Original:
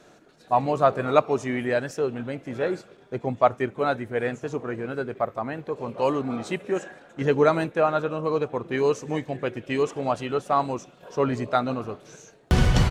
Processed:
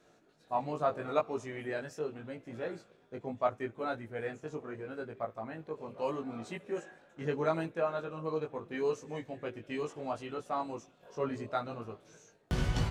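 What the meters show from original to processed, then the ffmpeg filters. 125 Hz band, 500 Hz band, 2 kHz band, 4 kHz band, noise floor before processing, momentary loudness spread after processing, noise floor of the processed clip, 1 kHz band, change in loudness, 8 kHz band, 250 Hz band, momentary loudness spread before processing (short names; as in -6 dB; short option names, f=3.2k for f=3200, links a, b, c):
-12.0 dB, -11.0 dB, -11.5 dB, -11.5 dB, -54 dBFS, 10 LU, -65 dBFS, -11.5 dB, -11.5 dB, n/a, -11.5 dB, 11 LU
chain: -af "flanger=delay=17.5:depth=2.2:speed=0.76,volume=-8.5dB"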